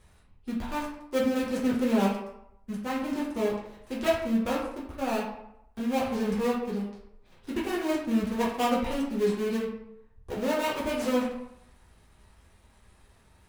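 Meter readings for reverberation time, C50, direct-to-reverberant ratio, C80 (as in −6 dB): 0.80 s, 3.5 dB, −6.0 dB, 6.5 dB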